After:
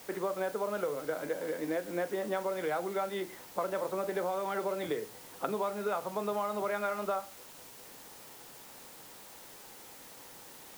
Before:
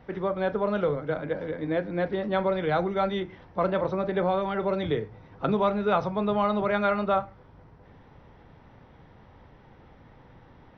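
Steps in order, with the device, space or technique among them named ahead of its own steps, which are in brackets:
baby monitor (band-pass filter 320–3,100 Hz; downward compressor, threshold −30 dBFS, peak gain reduction 10.5 dB; white noise bed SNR 16 dB)

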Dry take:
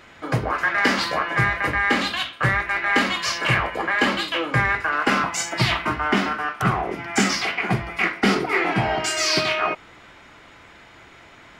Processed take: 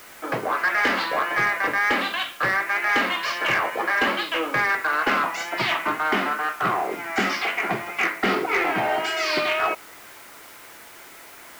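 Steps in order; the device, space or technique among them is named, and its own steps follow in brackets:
tape answering machine (band-pass filter 320–3,100 Hz; soft clipping −15 dBFS, distortion −17 dB; tape wow and flutter; white noise bed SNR 23 dB)
level +1.5 dB

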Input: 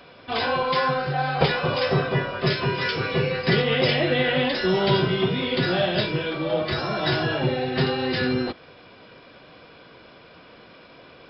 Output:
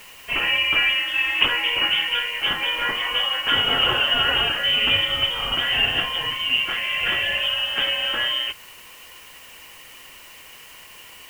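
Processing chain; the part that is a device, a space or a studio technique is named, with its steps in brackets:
scrambled radio voice (band-pass filter 340–3,100 Hz; voice inversion scrambler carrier 3,400 Hz; white noise bed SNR 24 dB)
level +3.5 dB

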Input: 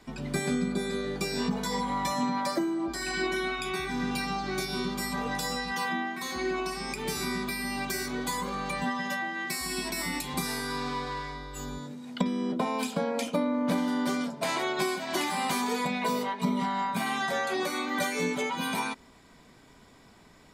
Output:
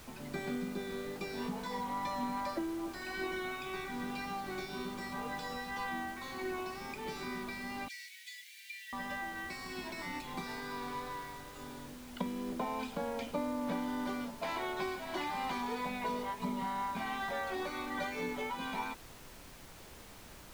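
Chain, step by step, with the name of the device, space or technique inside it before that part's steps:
horn gramophone (band-pass filter 180–3,700 Hz; parametric band 880 Hz +4.5 dB 0.25 octaves; tape wow and flutter 15 cents; pink noise bed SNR 13 dB)
0:07.88–0:08.93: Butterworth high-pass 1,900 Hz 72 dB per octave
level −8 dB

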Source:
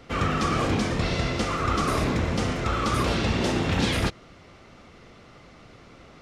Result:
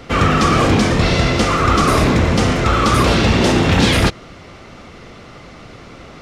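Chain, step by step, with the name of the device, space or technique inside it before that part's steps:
parallel distortion (in parallel at −7 dB: hard clipping −23.5 dBFS, distortion −10 dB)
on the sum: level +8.5 dB

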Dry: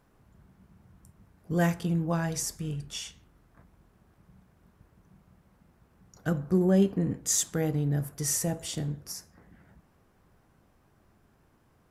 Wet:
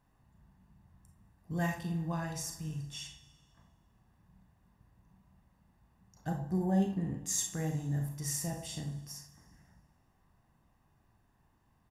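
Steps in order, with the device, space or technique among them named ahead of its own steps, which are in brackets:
0:06.27–0:06.81: thirty-one-band graphic EQ 800 Hz +11 dB, 1,250 Hz −10 dB, 2,500 Hz −7 dB
microphone above a desk (comb filter 1.1 ms, depth 51%; convolution reverb RT60 0.40 s, pre-delay 32 ms, DRR 3.5 dB)
four-comb reverb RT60 1.6 s, combs from 28 ms, DRR 15 dB
level −9 dB

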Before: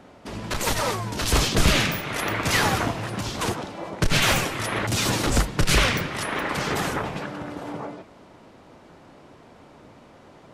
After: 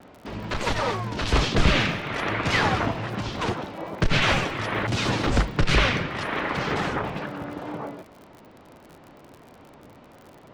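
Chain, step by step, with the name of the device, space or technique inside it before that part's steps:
lo-fi chain (low-pass filter 3,900 Hz 12 dB per octave; tape wow and flutter; surface crackle 55 per second −37 dBFS)

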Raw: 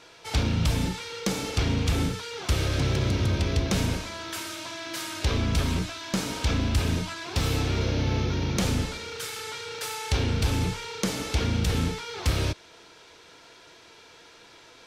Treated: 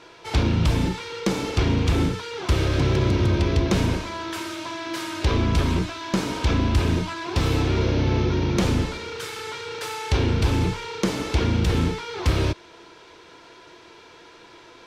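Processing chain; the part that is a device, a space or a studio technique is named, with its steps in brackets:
inside a helmet (high-shelf EQ 5,300 Hz −10 dB; hollow resonant body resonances 350/1,000 Hz, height 7 dB)
level +4 dB

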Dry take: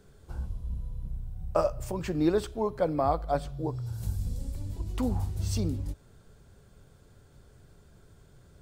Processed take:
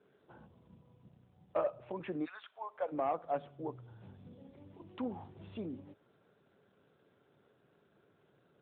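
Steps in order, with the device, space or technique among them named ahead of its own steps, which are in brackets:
0:02.24–0:02.91: high-pass filter 1,400 Hz → 500 Hz 24 dB per octave
telephone (band-pass filter 250–3,200 Hz; soft clipping −19 dBFS, distortion −17 dB; level −4.5 dB; AMR narrowband 12.2 kbit/s 8,000 Hz)

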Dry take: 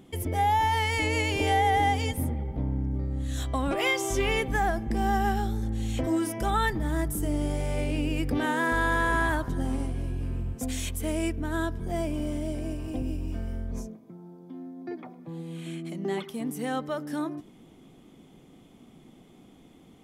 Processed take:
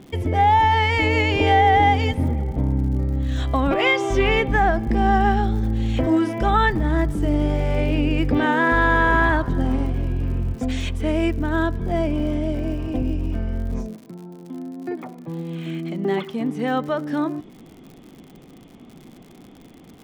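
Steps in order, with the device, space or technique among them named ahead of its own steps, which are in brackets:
lo-fi chain (low-pass filter 3,400 Hz 12 dB per octave; tape wow and flutter 18 cents; surface crackle 85 per second −44 dBFS)
level +8 dB

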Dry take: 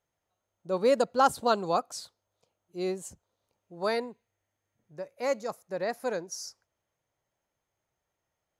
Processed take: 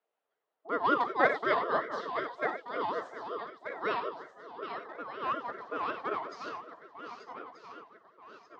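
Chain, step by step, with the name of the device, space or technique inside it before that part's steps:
feedback delay that plays each chunk backwards 616 ms, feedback 64%, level −7.5 dB
0:05.12–0:05.58: high-frequency loss of the air 80 metres
reverb whose tail is shaped and stops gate 120 ms flat, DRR 6 dB
voice changer toy (ring modulator whose carrier an LFO sweeps 670 Hz, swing 30%, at 5.4 Hz; loudspeaker in its box 430–3,600 Hz, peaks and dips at 450 Hz +9 dB, 660 Hz +6 dB, 1,500 Hz −3 dB, 2,400 Hz −4 dB)

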